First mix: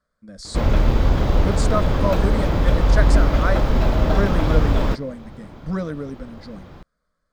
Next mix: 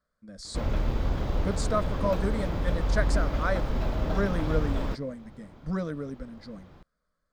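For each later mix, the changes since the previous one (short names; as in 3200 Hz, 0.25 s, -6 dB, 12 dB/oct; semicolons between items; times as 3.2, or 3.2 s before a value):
speech -5.0 dB; background -10.5 dB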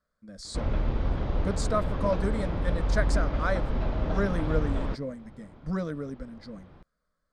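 background: add air absorption 160 m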